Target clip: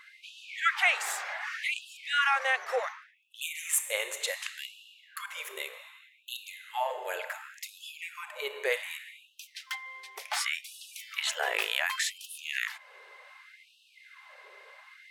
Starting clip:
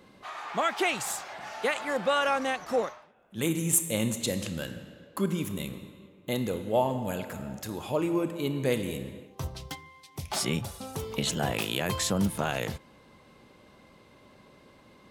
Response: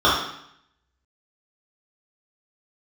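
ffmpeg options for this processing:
-filter_complex "[0:a]equalizer=frequency=1900:width_type=o:width=1.2:gain=12,asplit=2[link_01][link_02];[link_02]acompressor=threshold=-37dB:ratio=8,volume=-1dB[link_03];[link_01][link_03]amix=inputs=2:normalize=0,afftfilt=real='re*gte(b*sr/1024,350*pow(2600/350,0.5+0.5*sin(2*PI*0.67*pts/sr)))':imag='im*gte(b*sr/1024,350*pow(2600/350,0.5+0.5*sin(2*PI*0.67*pts/sr)))':win_size=1024:overlap=0.75,volume=-5dB"

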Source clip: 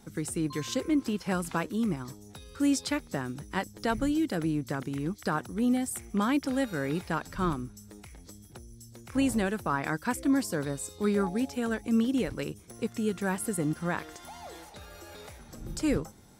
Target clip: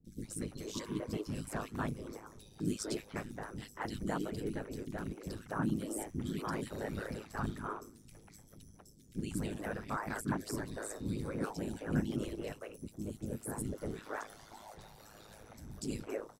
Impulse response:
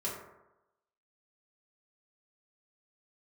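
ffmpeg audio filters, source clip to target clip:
-filter_complex "[0:a]asettb=1/sr,asplit=3[link_01][link_02][link_03];[link_01]atrim=end=8.714[link_04];[link_02]atrim=start=8.71:end=9.31,asetpts=PTS-STARTPTS,afade=type=in:duration=0.004:curve=qsin,afade=type=out:start_time=0.596:duration=0.004:curve=qsin,tremolo=f=120:d=0.71[link_05];[link_03]atrim=start=9.306[link_06];[link_04][link_05]acrossfade=duration=0.004:curve1=hsin:curve2=qsin[link_07];[link_07][link_06]acrossfade=duration=0.004:curve1=qsin:curve2=hsin,asettb=1/sr,asplit=3[link_08][link_09][link_10];[link_08]atrim=end=12.644[link_11];[link_09]atrim=start=12.64:end=13.53,asetpts=PTS-STARTPTS,afade=type=in:duration=0.004:curve=qsin,afade=type=out:start_time=0.886:duration=0.004:curve=qsin,equalizer=frequency=2100:width=0.47:gain=-10[link_12];[link_10]atrim=start=13.526[link_13];[link_11][link_12]acrossfade=duration=0.004:curve1=hsin:curve2=qsin[link_14];[link_14][link_13]acrossfade=duration=0.004:curve1=qsin:curve2=hsin,afftfilt=real='hypot(re,im)*cos(2*PI*random(0))':imag='hypot(re,im)*sin(2*PI*random(1))':win_size=512:overlap=0.75,aeval=exprs='val(0)*sin(2*PI*53*n/s)':channel_layout=same,acrossover=split=350|2500[link_15][link_16][link_17];[link_17]adelay=50[link_18];[link_16]adelay=240[link_19];[link_15][link_19][link_18]amix=inputs=3:normalize=0,volume=1.5dB"

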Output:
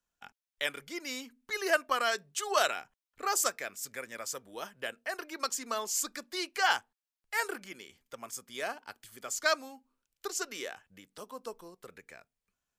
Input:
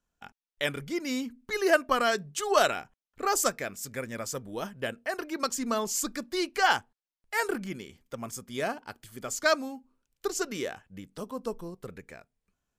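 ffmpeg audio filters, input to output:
ffmpeg -i in.wav -filter_complex "[0:a]tiltshelf=frequency=660:gain=-4.5,acrossover=split=270[link_01][link_02];[link_01]acompressor=threshold=-56dB:ratio=6[link_03];[link_03][link_02]amix=inputs=2:normalize=0,volume=-5.5dB" out.wav

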